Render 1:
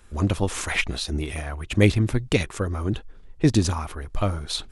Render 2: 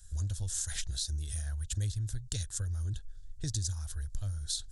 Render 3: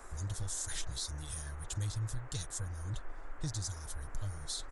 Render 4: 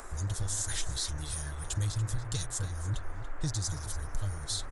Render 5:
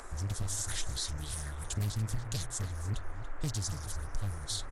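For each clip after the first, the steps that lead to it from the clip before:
FFT filter 100 Hz 0 dB, 240 Hz -21 dB, 410 Hz -23 dB, 620 Hz -21 dB, 1.2 kHz -25 dB, 1.6 kHz -9 dB, 2.3 kHz -26 dB, 3.5 kHz -5 dB, 7.2 kHz +7 dB, 12 kHz +1 dB; compression 4:1, threshold -32 dBFS, peak gain reduction 12 dB; peaking EQ 210 Hz -3 dB 0.77 oct
comb 6.4 ms, depth 56%; peak limiter -26.5 dBFS, peak gain reduction 7 dB; band noise 240–1700 Hz -54 dBFS; trim -1.5 dB
upward compressor, threshold -52 dBFS; echo from a far wall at 49 m, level -10 dB; trim +5 dB
loudspeaker Doppler distortion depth 0.83 ms; trim -1.5 dB

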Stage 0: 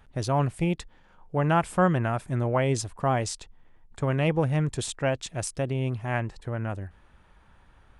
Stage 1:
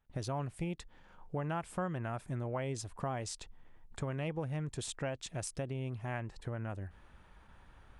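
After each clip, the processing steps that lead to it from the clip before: compression 3:1, threshold -36 dBFS, peak gain reduction 14.5 dB; gate with hold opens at -48 dBFS; trim -1.5 dB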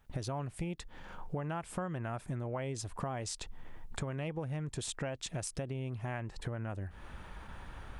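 compression 3:1, threshold -50 dBFS, peak gain reduction 13.5 dB; trim +11.5 dB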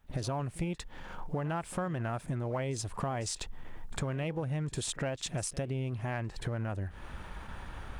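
waveshaping leveller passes 1; pre-echo 53 ms -18.5 dB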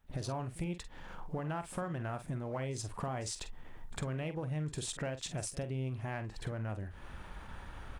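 doubling 46 ms -11 dB; trim -4 dB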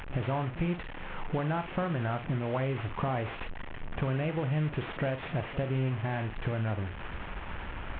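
one-bit delta coder 16 kbps, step -41.5 dBFS; trim +7 dB

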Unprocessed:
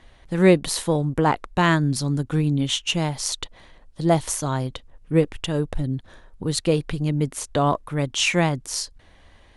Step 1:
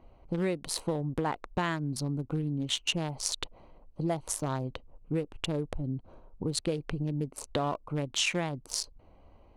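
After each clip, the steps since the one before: local Wiener filter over 25 samples; compression 10:1, threshold -25 dBFS, peak gain reduction 15.5 dB; bass shelf 240 Hz -5 dB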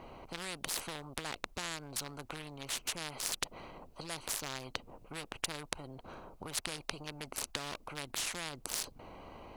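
spectrum-flattening compressor 4:1; trim +2 dB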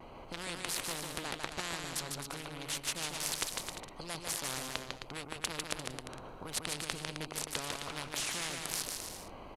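resampled via 32 kHz; vibrato 1.3 Hz 48 cents; bouncing-ball echo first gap 150 ms, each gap 0.75×, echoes 5

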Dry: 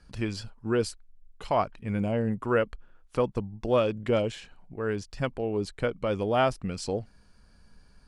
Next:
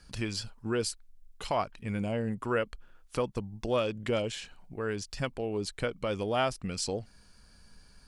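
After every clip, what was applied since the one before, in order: treble shelf 2.5 kHz +9.5 dB; in parallel at +2 dB: compression, threshold -32 dBFS, peak gain reduction 14 dB; on the sum: trim -8 dB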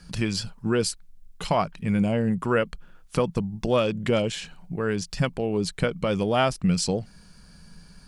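peaking EQ 170 Hz +14 dB 0.4 oct; trim +6 dB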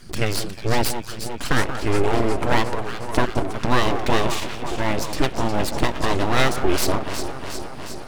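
echo whose repeats swap between lows and highs 180 ms, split 830 Hz, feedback 83%, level -8 dB; full-wave rectifier; trim +6 dB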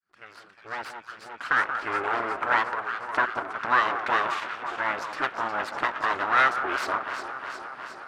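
fade-in on the opening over 1.89 s; band-pass filter 1.4 kHz, Q 2.9; trim +6.5 dB

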